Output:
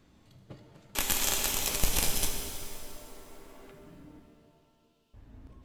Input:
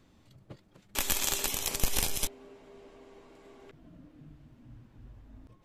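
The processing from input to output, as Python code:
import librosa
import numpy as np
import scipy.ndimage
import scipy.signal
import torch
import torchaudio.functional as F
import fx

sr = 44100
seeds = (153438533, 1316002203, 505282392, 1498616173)

y = fx.cheby1_highpass(x, sr, hz=2700.0, order=5, at=(4.19, 5.14))
y = fx.rev_shimmer(y, sr, seeds[0], rt60_s=2.3, semitones=7, shimmer_db=-8, drr_db=3.0)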